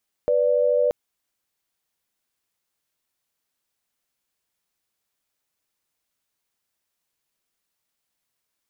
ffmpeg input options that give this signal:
ffmpeg -f lavfi -i "aevalsrc='0.106*(sin(2*PI*493.88*t)+sin(2*PI*587.33*t))':duration=0.63:sample_rate=44100" out.wav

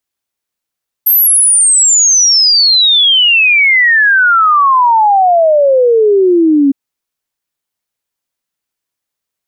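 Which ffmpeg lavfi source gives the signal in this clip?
ffmpeg -f lavfi -i "aevalsrc='0.562*clip(min(t,5.66-t)/0.01,0,1)*sin(2*PI*13000*5.66/log(270/13000)*(exp(log(270/13000)*t/5.66)-1))':duration=5.66:sample_rate=44100" out.wav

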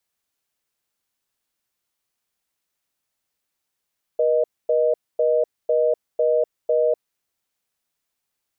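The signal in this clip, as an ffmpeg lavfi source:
ffmpeg -f lavfi -i "aevalsrc='0.119*(sin(2*PI*480*t)+sin(2*PI*620*t))*clip(min(mod(t,0.5),0.25-mod(t,0.5))/0.005,0,1)':duration=3:sample_rate=44100" out.wav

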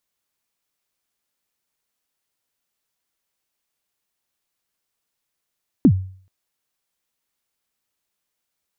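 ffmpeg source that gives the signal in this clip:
ffmpeg -f lavfi -i "aevalsrc='0.531*pow(10,-3*t/0.49)*sin(2*PI*(320*0.07/log(94/320)*(exp(log(94/320)*min(t,0.07)/0.07)-1)+94*max(t-0.07,0)))':duration=0.43:sample_rate=44100" out.wav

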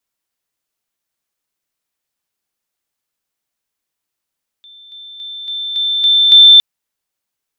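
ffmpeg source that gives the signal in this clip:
ffmpeg -f lavfi -i "aevalsrc='pow(10,(-37.5+6*floor(t/0.28))/20)*sin(2*PI*3550*t)':duration=1.96:sample_rate=44100" out.wav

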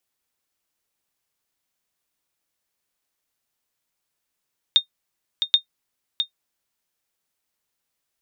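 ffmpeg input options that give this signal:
ffmpeg -f lavfi -i "aevalsrc='0.531*(sin(2*PI*3670*mod(t,0.78))*exp(-6.91*mod(t,0.78)/0.1)+0.422*sin(2*PI*3670*max(mod(t,0.78)-0.66,0))*exp(-6.91*max(mod(t,0.78)-0.66,0)/0.1))':duration=1.56:sample_rate=44100" out.wav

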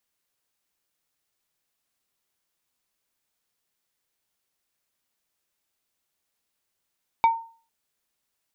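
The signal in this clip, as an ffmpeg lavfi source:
ffmpeg -f lavfi -i "aevalsrc='0.251*pow(10,-3*t/0.41)*sin(2*PI*913*t)+0.0668*pow(10,-3*t/0.137)*sin(2*PI*2282.5*t)+0.0178*pow(10,-3*t/0.078)*sin(2*PI*3652*t)+0.00473*pow(10,-3*t/0.059)*sin(2*PI*4565*t)+0.00126*pow(10,-3*t/0.043)*sin(2*PI*5934.5*t)':duration=0.45:sample_rate=44100" out.wav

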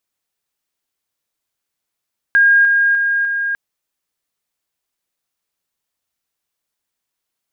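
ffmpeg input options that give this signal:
ffmpeg -f lavfi -i "aevalsrc='pow(10,(-7.5-3*floor(t/0.3))/20)*sin(2*PI*1620*t)':duration=1.2:sample_rate=44100" out.wav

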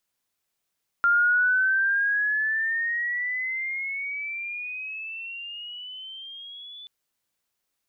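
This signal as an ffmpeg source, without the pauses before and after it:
ffmpeg -f lavfi -i "aevalsrc='pow(10,(-16.5-23*t/5.83)/20)*sin(2*PI*1390*5.83/(16*log(2)/12)*(exp(16*log(2)/12*t/5.83)-1))':duration=5.83:sample_rate=44100" out.wav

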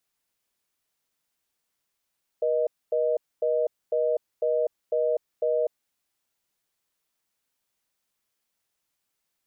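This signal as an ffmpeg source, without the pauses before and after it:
ffmpeg -f lavfi -i "aevalsrc='0.0631*(sin(2*PI*480*t)+sin(2*PI*620*t))*clip(min(mod(t,0.5),0.25-mod(t,0.5))/0.005,0,1)':duration=3.29:sample_rate=44100" out.wav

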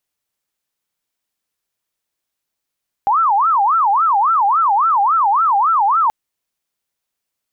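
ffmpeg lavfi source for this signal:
ffmpeg -f lavfi -i "aevalsrc='0.282*sin(2*PI*(1069.5*t-280.5/(2*PI*3.6)*sin(2*PI*3.6*t)))':duration=3.03:sample_rate=44100" out.wav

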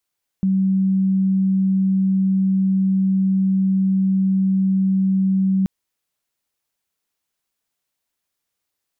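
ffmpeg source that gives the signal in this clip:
ffmpeg -f lavfi -i "sine=frequency=191:duration=5.23:sample_rate=44100,volume=3.56dB" out.wav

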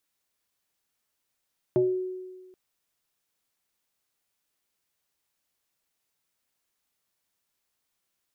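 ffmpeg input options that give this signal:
ffmpeg -f lavfi -i "aevalsrc='0.133*pow(10,-3*t/1.41)*sin(2*PI*370*t+0.73*pow(10,-3*t/0.41)*sin(2*PI*0.65*370*t))':duration=0.78:sample_rate=44100" out.wav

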